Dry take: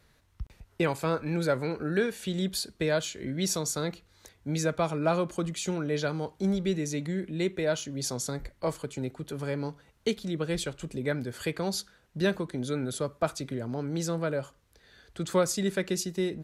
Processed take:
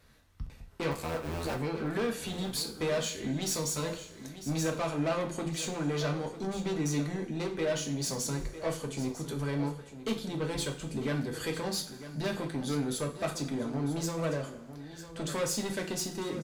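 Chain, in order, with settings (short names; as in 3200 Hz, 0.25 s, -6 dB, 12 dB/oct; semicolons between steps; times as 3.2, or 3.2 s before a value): 0.91–1.55 cycle switcher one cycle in 2, muted; soft clip -29.5 dBFS, distortion -8 dB; echo 0.95 s -13 dB; two-slope reverb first 0.32 s, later 1.7 s, from -18 dB, DRR 2 dB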